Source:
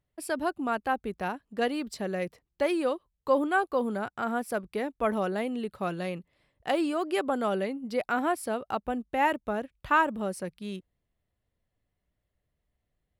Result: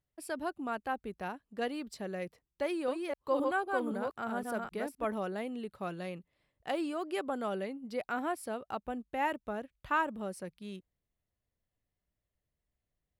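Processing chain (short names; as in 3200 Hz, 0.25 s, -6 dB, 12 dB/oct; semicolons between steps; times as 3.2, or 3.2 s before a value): 2.62–5.05 reverse delay 0.259 s, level -3 dB; gain -7 dB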